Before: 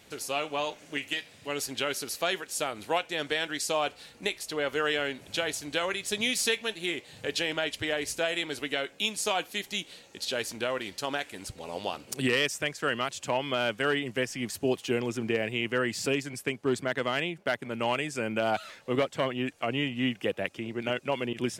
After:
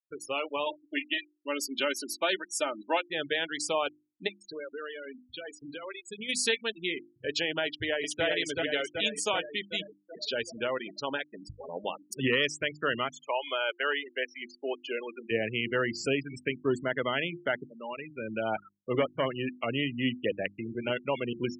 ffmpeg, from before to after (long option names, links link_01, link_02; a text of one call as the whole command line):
ffmpeg -i in.wav -filter_complex "[0:a]asettb=1/sr,asplit=3[link_01][link_02][link_03];[link_01]atrim=end=0.664[link_04];[link_02]atrim=start=0.66:end=3,asetpts=PTS-STARTPTS,afade=type=in:duration=0.004:curve=qsin,afade=type=out:start_time=2.336:duration=0.004:curve=qsin,aecho=1:1:3.3:0.59,atrim=end_sample=103194[link_05];[link_03]atrim=start=2.996[link_06];[link_04][link_05]acrossfade=duration=0.004:curve1=hsin:curve2=qsin[link_07];[link_07][link_06]acrossfade=duration=0.004:curve1=qsin:curve2=hsin,asplit=3[link_08][link_09][link_10];[link_08]afade=type=out:start_time=4.27:duration=0.02[link_11];[link_09]acompressor=threshold=-35dB:ratio=4:attack=3.2:release=140:knee=1:detection=peak,afade=type=in:start_time=4.27:duration=0.02,afade=type=out:start_time=6.28:duration=0.02[link_12];[link_10]afade=type=in:start_time=6.28:duration=0.02[link_13];[link_11][link_12][link_13]amix=inputs=3:normalize=0,asplit=2[link_14][link_15];[link_15]afade=type=in:start_time=7.65:duration=0.01,afade=type=out:start_time=8.24:duration=0.01,aecho=0:1:380|760|1140|1520|1900|2280|2660|3040|3420|3800|4180|4560:0.794328|0.55603|0.389221|0.272455|0.190718|0.133503|0.0934519|0.0654163|0.0457914|0.032054|0.0224378|0.0157065[link_16];[link_14][link_16]amix=inputs=2:normalize=0,asplit=3[link_17][link_18][link_19];[link_17]afade=type=out:start_time=13.22:duration=0.02[link_20];[link_18]highpass=530,lowpass=6700,afade=type=in:start_time=13.22:duration=0.02,afade=type=out:start_time=15.3:duration=0.02[link_21];[link_19]afade=type=in:start_time=15.3:duration=0.02[link_22];[link_20][link_21][link_22]amix=inputs=3:normalize=0,asplit=2[link_23][link_24];[link_23]atrim=end=17.65,asetpts=PTS-STARTPTS,afade=type=out:start_time=17.646:duration=0.004:curve=hsin:silence=0.199526[link_25];[link_24]atrim=start=17.65,asetpts=PTS-STARTPTS,afade=type=in:duration=1.19:silence=0.199526[link_26];[link_25][link_26]concat=n=2:v=0:a=1,bandreject=frequency=720:width=13,afftfilt=real='re*gte(hypot(re,im),0.0316)':imag='im*gte(hypot(re,im),0.0316)':win_size=1024:overlap=0.75,bandreject=frequency=50:width_type=h:width=6,bandreject=frequency=100:width_type=h:width=6,bandreject=frequency=150:width_type=h:width=6,bandreject=frequency=200:width_type=h:width=6,bandreject=frequency=250:width_type=h:width=6,bandreject=frequency=300:width_type=h:width=6,bandreject=frequency=350:width_type=h:width=6" out.wav